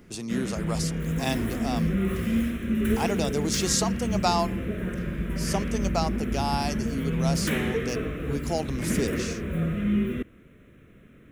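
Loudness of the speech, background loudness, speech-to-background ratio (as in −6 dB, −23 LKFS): −30.5 LKFS, −28.5 LKFS, −2.0 dB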